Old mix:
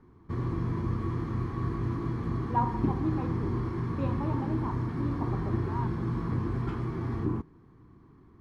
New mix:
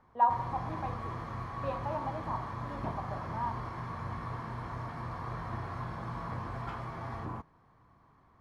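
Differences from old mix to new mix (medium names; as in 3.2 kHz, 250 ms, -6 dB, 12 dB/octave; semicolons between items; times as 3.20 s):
speech: entry -2.35 s; master: add resonant low shelf 470 Hz -9 dB, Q 3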